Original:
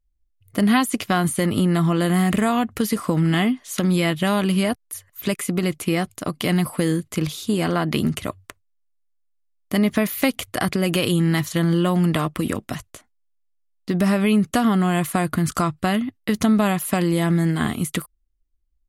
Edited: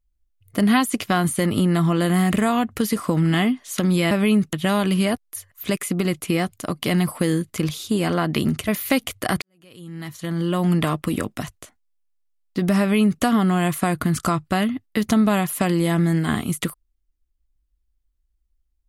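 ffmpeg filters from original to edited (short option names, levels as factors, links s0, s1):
-filter_complex "[0:a]asplit=5[s0][s1][s2][s3][s4];[s0]atrim=end=4.112[s5];[s1]atrim=start=14.118:end=14.542[s6];[s2]atrim=start=4.108:end=8.262[s7];[s3]atrim=start=9.998:end=10.74,asetpts=PTS-STARTPTS,afade=t=out:st=0.738:d=0.004:c=hsin[s8];[s4]atrim=start=10.74,asetpts=PTS-STARTPTS,afade=t=in:d=1.29:c=qua[s9];[s5][s6]acrossfade=d=0.004:c1=hsin:c2=hsin[s10];[s10][s7]acrossfade=d=0.004:c1=hsin:c2=hsin[s11];[s8][s9]concat=n=2:v=0:a=1[s12];[s11][s12]acrossfade=d=0.004:c1=hsin:c2=hsin"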